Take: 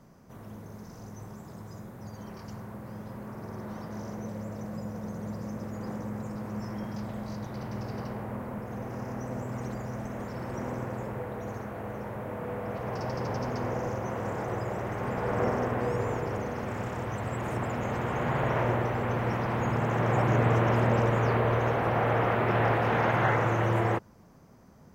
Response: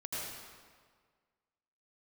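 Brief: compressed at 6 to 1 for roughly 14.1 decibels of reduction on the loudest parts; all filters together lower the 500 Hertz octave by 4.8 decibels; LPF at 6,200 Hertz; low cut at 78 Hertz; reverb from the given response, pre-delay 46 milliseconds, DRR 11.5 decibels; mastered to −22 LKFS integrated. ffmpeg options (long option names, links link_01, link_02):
-filter_complex "[0:a]highpass=78,lowpass=6200,equalizer=frequency=500:width_type=o:gain=-6,acompressor=threshold=-38dB:ratio=6,asplit=2[link_01][link_02];[1:a]atrim=start_sample=2205,adelay=46[link_03];[link_02][link_03]afir=irnorm=-1:irlink=0,volume=-14dB[link_04];[link_01][link_04]amix=inputs=2:normalize=0,volume=20dB"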